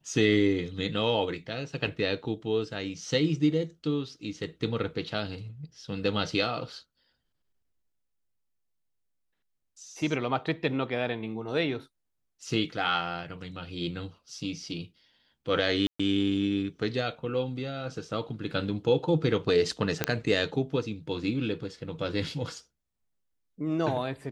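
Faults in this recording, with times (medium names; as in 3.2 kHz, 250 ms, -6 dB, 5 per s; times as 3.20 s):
15.87–15.99 s: dropout 125 ms
20.04 s: pop -8 dBFS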